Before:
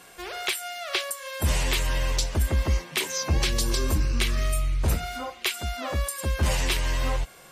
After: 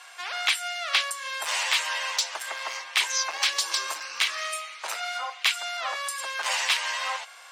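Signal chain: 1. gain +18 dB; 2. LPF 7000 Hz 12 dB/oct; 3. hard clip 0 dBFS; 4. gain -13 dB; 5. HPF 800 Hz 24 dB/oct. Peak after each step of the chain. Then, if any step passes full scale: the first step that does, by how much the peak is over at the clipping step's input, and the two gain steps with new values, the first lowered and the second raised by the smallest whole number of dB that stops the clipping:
+4.0, +4.0, 0.0, -13.0, -9.5 dBFS; step 1, 4.0 dB; step 1 +14 dB, step 4 -9 dB

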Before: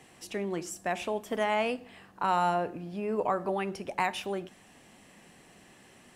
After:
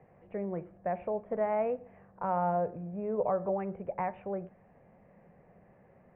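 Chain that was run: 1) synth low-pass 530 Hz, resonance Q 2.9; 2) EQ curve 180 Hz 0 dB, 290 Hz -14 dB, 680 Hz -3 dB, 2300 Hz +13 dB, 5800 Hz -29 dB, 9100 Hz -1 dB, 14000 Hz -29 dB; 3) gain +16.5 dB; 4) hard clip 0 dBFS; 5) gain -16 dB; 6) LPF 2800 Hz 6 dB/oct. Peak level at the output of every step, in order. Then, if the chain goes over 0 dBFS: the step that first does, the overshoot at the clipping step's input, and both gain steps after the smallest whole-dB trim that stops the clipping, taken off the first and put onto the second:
-12.5, -19.5, -3.0, -3.0, -19.0, -19.0 dBFS; no overload

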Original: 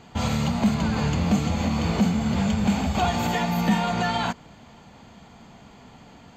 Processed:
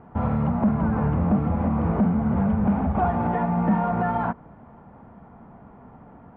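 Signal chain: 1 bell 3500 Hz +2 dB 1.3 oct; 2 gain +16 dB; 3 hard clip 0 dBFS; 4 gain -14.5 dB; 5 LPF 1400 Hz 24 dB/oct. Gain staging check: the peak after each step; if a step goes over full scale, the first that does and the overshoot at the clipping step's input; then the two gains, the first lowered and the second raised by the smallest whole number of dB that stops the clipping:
-11.0, +5.0, 0.0, -14.5, -13.0 dBFS; step 2, 5.0 dB; step 2 +11 dB, step 4 -9.5 dB

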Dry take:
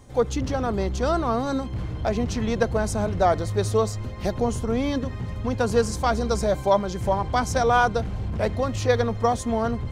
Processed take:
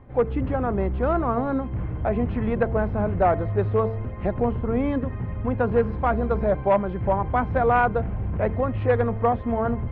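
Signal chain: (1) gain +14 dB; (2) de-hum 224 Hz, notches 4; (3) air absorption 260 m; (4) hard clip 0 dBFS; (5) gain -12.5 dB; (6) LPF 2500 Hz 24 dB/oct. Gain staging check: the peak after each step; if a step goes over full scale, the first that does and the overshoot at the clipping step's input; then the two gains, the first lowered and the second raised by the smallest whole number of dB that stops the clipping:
+6.5, +6.5, +5.5, 0.0, -12.5, -11.5 dBFS; step 1, 5.5 dB; step 1 +8 dB, step 5 -6.5 dB

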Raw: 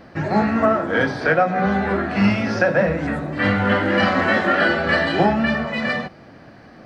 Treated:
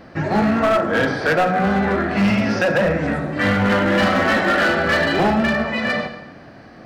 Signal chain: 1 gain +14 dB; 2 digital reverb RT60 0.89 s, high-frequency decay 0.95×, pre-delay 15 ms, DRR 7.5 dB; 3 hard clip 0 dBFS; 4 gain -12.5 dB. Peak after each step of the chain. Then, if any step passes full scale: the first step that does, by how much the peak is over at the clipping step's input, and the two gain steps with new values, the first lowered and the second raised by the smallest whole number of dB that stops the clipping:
+10.0, +10.0, 0.0, -12.5 dBFS; step 1, 10.0 dB; step 1 +4 dB, step 4 -2.5 dB

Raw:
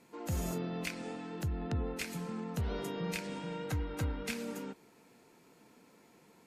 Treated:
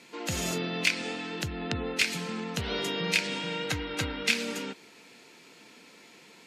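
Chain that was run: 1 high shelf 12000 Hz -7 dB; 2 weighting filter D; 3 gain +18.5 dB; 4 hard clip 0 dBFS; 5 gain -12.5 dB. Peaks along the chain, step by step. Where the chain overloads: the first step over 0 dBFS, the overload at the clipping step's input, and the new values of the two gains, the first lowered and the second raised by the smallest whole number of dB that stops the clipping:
-23.5, -13.0, +5.5, 0.0, -12.5 dBFS; step 3, 5.5 dB; step 3 +12.5 dB, step 5 -6.5 dB

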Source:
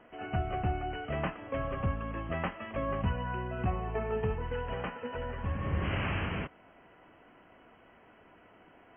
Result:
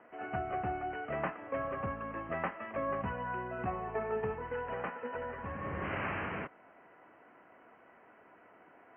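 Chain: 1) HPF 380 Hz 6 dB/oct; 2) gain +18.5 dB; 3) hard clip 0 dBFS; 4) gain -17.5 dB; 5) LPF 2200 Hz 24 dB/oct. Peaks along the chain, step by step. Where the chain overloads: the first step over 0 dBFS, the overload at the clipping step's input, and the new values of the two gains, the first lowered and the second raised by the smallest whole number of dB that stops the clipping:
-23.0, -4.5, -4.5, -22.0, -21.5 dBFS; no overload

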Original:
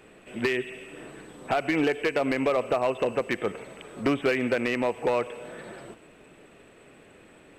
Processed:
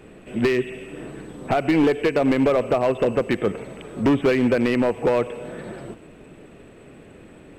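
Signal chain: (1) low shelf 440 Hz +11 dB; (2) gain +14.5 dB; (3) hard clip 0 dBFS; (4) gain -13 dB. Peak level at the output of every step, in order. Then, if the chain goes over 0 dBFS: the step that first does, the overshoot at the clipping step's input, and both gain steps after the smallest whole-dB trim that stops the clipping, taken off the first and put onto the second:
-7.5, +7.0, 0.0, -13.0 dBFS; step 2, 7.0 dB; step 2 +7.5 dB, step 4 -6 dB

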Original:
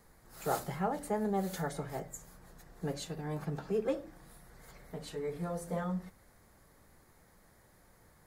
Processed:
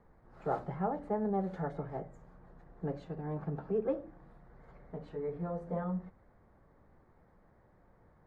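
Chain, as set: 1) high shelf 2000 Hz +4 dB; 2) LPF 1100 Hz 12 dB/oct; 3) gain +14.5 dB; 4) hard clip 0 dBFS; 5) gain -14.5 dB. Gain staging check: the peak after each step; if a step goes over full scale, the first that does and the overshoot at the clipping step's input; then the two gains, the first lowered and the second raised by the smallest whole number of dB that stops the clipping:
-17.0, -19.0, -4.5, -4.5, -19.0 dBFS; no overload

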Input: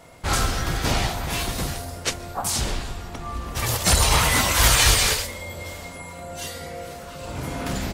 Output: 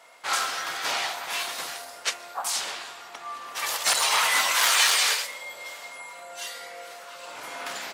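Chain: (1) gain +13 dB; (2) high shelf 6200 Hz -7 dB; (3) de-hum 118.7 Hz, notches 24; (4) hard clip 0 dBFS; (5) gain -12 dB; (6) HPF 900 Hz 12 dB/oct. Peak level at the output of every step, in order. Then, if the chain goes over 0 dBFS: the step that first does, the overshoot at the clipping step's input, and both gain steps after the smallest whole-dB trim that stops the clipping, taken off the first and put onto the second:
+9.0, +7.5, +7.5, 0.0, -12.0, -8.5 dBFS; step 1, 7.5 dB; step 1 +5 dB, step 5 -4 dB

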